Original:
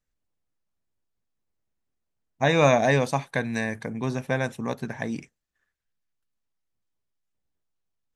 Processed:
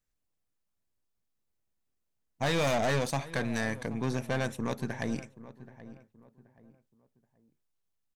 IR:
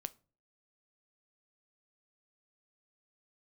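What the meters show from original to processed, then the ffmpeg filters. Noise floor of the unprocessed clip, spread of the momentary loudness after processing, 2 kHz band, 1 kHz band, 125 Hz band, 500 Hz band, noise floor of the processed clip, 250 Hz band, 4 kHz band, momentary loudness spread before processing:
-81 dBFS, 23 LU, -6.5 dB, -7.5 dB, -5.5 dB, -7.5 dB, -81 dBFS, -5.0 dB, -3.0 dB, 13 LU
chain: -filter_complex "[0:a]highshelf=f=5.8k:g=5,aeval=exprs='(tanh(17.8*val(0)+0.55)-tanh(0.55))/17.8':c=same,asplit=2[a][b];[b]adelay=778,lowpass=f=1.4k:p=1,volume=-15.5dB,asplit=2[c][d];[d]adelay=778,lowpass=f=1.4k:p=1,volume=0.34,asplit=2[e][f];[f]adelay=778,lowpass=f=1.4k:p=1,volume=0.34[g];[a][c][e][g]amix=inputs=4:normalize=0"

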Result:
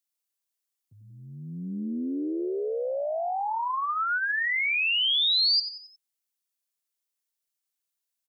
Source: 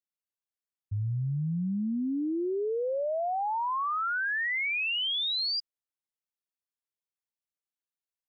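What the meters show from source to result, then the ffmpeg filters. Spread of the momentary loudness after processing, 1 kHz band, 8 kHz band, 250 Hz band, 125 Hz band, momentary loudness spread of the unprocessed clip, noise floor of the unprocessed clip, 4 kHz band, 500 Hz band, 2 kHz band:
15 LU, +1.5 dB, n/a, -1.0 dB, -10.5 dB, 5 LU, under -85 dBFS, +6.5 dB, +0.5 dB, +3.5 dB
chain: -filter_complex "[0:a]highpass=f=200:w=0.5412,highpass=f=200:w=1.3066,highshelf=f=3.4k:g=11.5,asplit=5[a][b][c][d][e];[b]adelay=90,afreqshift=100,volume=-11.5dB[f];[c]adelay=180,afreqshift=200,volume=-18.6dB[g];[d]adelay=270,afreqshift=300,volume=-25.8dB[h];[e]adelay=360,afreqshift=400,volume=-32.9dB[i];[a][f][g][h][i]amix=inputs=5:normalize=0"

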